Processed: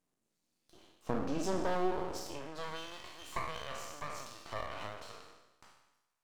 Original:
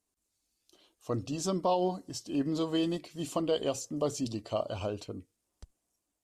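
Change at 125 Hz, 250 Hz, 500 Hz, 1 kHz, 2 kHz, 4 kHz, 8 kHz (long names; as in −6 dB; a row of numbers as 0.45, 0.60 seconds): −9.0, −9.0, −7.0, −2.5, +5.0, −6.0, −7.5 decibels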